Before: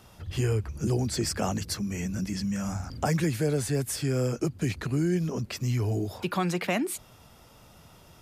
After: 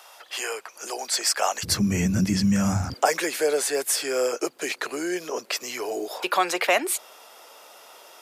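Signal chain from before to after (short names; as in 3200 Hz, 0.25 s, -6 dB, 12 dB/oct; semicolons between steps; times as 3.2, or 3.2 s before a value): HPF 620 Hz 24 dB/oct, from 1.63 s 78 Hz, from 2.94 s 440 Hz; gain +9 dB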